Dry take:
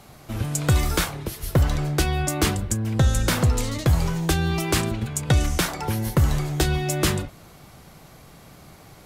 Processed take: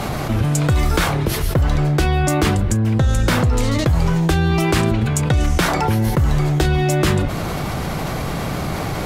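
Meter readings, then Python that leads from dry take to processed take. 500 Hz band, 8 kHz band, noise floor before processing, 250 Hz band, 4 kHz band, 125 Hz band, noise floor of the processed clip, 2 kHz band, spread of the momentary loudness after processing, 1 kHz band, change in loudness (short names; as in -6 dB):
+7.0 dB, +0.5 dB, -48 dBFS, +7.0 dB, +3.0 dB, +6.0 dB, -24 dBFS, +6.0 dB, 7 LU, +8.0 dB, +5.0 dB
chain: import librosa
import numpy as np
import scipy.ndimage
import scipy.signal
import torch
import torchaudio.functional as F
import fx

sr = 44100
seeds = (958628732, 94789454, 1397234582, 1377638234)

y = fx.high_shelf(x, sr, hz=4400.0, db=-9.5)
y = fx.env_flatten(y, sr, amount_pct=70)
y = y * 10.0 ** (1.0 / 20.0)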